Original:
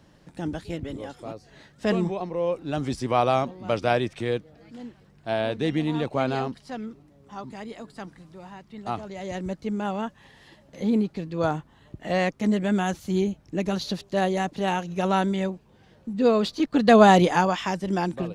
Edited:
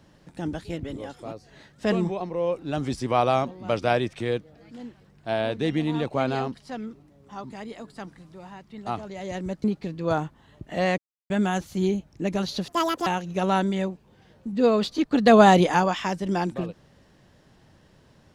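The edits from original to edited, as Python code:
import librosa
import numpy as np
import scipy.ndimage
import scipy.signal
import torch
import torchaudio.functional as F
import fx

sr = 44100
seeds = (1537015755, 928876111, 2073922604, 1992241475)

y = fx.edit(x, sr, fx.cut(start_s=9.64, length_s=1.33),
    fx.silence(start_s=12.31, length_s=0.32),
    fx.speed_span(start_s=14.01, length_s=0.67, speed=1.74), tone=tone)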